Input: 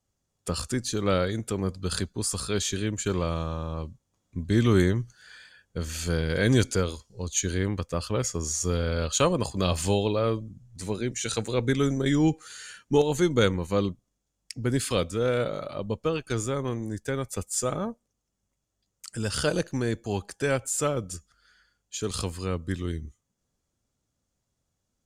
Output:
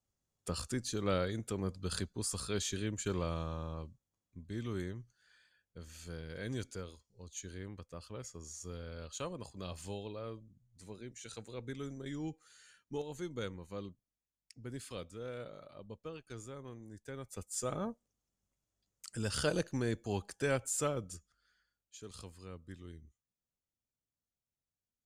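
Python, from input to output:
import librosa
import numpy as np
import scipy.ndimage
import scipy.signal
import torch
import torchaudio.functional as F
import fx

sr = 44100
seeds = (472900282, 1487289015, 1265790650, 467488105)

y = fx.gain(x, sr, db=fx.line((3.66, -8.5), (4.46, -18.5), (16.91, -18.5), (17.86, -7.0), (20.77, -7.0), (22.04, -19.0)))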